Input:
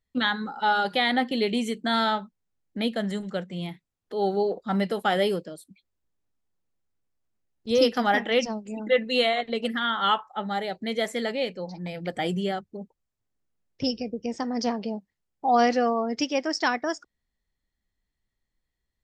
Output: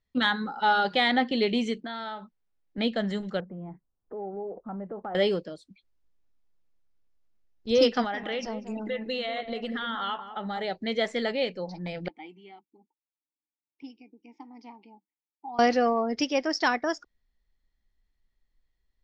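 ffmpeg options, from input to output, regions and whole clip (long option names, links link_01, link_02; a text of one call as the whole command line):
ffmpeg -i in.wav -filter_complex "[0:a]asettb=1/sr,asplit=3[link_01][link_02][link_03];[link_01]atrim=end=1.804[link_04];[link_02]atrim=start=1.8:end=2.78,asetpts=PTS-STARTPTS,afade=type=in:duration=0.004:curve=qsin,afade=type=out:start_time=0.976:duration=0.004:curve=qsin,bass=frequency=250:gain=-5,treble=frequency=4000:gain=-6,acompressor=threshold=-34dB:ratio=5:attack=3.2:release=140:knee=1:detection=peak[link_05];[link_03]atrim=start=2.776[link_06];[link_04][link_05]acrossfade=duration=0.004:curve1=hsin:curve2=qsin[link_07];[link_07][link_06]acrossfade=duration=0.004:curve1=qsin:curve2=hsin,asettb=1/sr,asplit=3[link_08][link_09][link_10];[link_08]atrim=end=3.404[link_11];[link_09]atrim=start=3.4:end=5.15,asetpts=PTS-STARTPTS,afade=type=in:duration=0.004:curve=qsin,afade=type=out:start_time=1.746:duration=0.004:curve=qsin,lowpass=frequency=1200:width=0.5412,lowpass=frequency=1200:width=1.3066,acompressor=threshold=-36dB:ratio=3:attack=3.2:release=140:knee=1:detection=peak[link_12];[link_10]atrim=start=5.146[link_13];[link_11][link_12]acrossfade=duration=0.004:curve1=hsin:curve2=qsin[link_14];[link_14][link_13]acrossfade=duration=0.004:curve1=qsin:curve2=hsin,asettb=1/sr,asplit=3[link_15][link_16][link_17];[link_15]atrim=end=8.044[link_18];[link_16]atrim=start=8.04:end=10.61,asetpts=PTS-STARTPTS,afade=type=in:duration=0.004:curve=qsin,afade=type=out:start_time=2.566:duration=0.004:curve=qsin,acompressor=threshold=-29dB:ratio=5:attack=3.2:release=140:knee=1:detection=peak,asplit=2[link_19][link_20];[link_20]adelay=192,lowpass=frequency=920:poles=1,volume=-8dB,asplit=2[link_21][link_22];[link_22]adelay=192,lowpass=frequency=920:poles=1,volume=0.26,asplit=2[link_23][link_24];[link_24]adelay=192,lowpass=frequency=920:poles=1,volume=0.26[link_25];[link_19][link_21][link_23][link_25]amix=inputs=4:normalize=0,atrim=end_sample=113337[link_26];[link_17]atrim=start=10.606[link_27];[link_18][link_26]acrossfade=duration=0.004:curve1=hsin:curve2=qsin[link_28];[link_28][link_27]acrossfade=duration=0.004:curve1=qsin:curve2=hsin,asettb=1/sr,asplit=3[link_29][link_30][link_31];[link_29]atrim=end=12.084[link_32];[link_30]atrim=start=12.08:end=15.59,asetpts=PTS-STARTPTS,afade=type=in:duration=0.004:curve=qsin,afade=type=out:start_time=3.506:duration=0.004:curve=qsin,asplit=3[link_33][link_34][link_35];[link_33]bandpass=frequency=300:width_type=q:width=8,volume=0dB[link_36];[link_34]bandpass=frequency=870:width_type=q:width=8,volume=-6dB[link_37];[link_35]bandpass=frequency=2240:width_type=q:width=8,volume=-9dB[link_38];[link_36][link_37][link_38]amix=inputs=3:normalize=0,lowshelf=frequency=380:gain=-12[link_39];[link_31]atrim=start=15.586[link_40];[link_32][link_39]acrossfade=duration=0.004:curve1=hsin:curve2=qsin[link_41];[link_41][link_40]acrossfade=duration=0.004:curve1=qsin:curve2=hsin,lowpass=frequency=6000:width=0.5412,lowpass=frequency=6000:width=1.3066,asubboost=boost=3:cutoff=53,acontrast=33,volume=-5dB" out.wav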